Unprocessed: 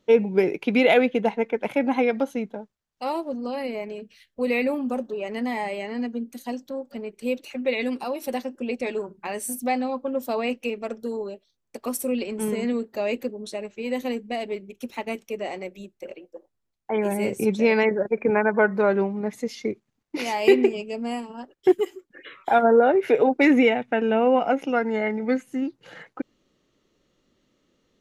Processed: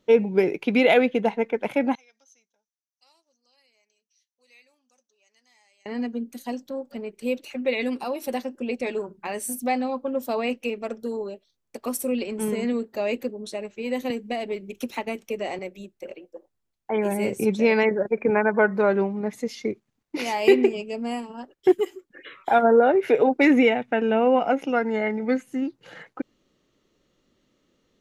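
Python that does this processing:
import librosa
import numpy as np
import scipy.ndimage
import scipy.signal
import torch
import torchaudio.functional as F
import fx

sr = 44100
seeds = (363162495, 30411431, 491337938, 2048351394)

y = fx.bandpass_q(x, sr, hz=6000.0, q=9.9, at=(1.95, 5.86))
y = fx.band_squash(y, sr, depth_pct=100, at=(14.1, 15.59))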